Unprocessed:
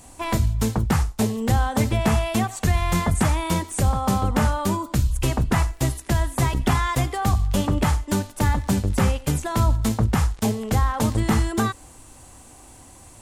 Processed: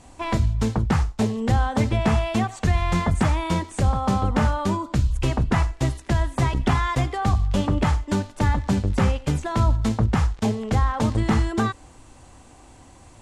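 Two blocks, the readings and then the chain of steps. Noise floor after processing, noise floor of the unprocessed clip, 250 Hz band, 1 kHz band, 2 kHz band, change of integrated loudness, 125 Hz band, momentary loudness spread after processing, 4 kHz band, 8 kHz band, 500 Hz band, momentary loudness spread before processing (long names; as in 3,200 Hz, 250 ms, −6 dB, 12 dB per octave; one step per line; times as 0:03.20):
−48 dBFS, −47 dBFS, 0.0 dB, −0.5 dB, −0.5 dB, −0.5 dB, 0.0 dB, 3 LU, −2.0 dB, −7.5 dB, 0.0 dB, 3 LU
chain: high-frequency loss of the air 80 metres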